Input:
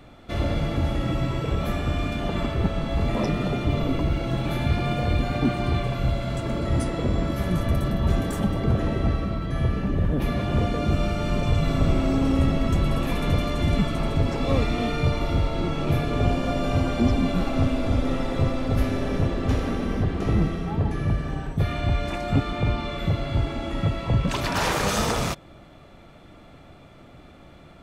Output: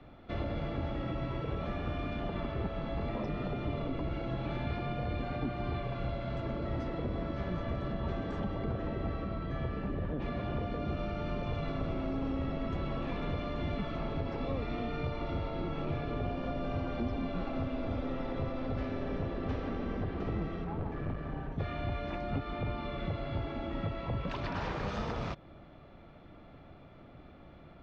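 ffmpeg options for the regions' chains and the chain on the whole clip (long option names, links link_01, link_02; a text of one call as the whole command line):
ffmpeg -i in.wav -filter_complex "[0:a]asettb=1/sr,asplit=3[link_01][link_02][link_03];[link_01]atrim=end=20.644[link_04];[link_02]atrim=start=20.64:end=21.52,asetpts=PTS-STARTPTS,afade=type=in:duration=0.004:curve=qsin,afade=type=out:start_time=0.876:duration=0.004:curve=qsin,highshelf=frequency=4100:gain=-10.5,aeval=exprs='clip(val(0),-1,0.0376)':channel_layout=same[link_05];[link_03]atrim=start=21.516[link_06];[link_04][link_05]acrossfade=duration=0.004:curve1=hsin:curve2=qsin[link_07];[link_07][link_06]acrossfade=duration=0.004:curve1=qsin:curve2=hsin,lowpass=frequency=5400:width=0.5412,lowpass=frequency=5400:width=1.3066,aemphasis=mode=reproduction:type=75fm,acrossover=split=110|300[link_08][link_09][link_10];[link_08]acompressor=threshold=-32dB:ratio=4[link_11];[link_09]acompressor=threshold=-35dB:ratio=4[link_12];[link_10]acompressor=threshold=-31dB:ratio=4[link_13];[link_11][link_12][link_13]amix=inputs=3:normalize=0,volume=-6dB" out.wav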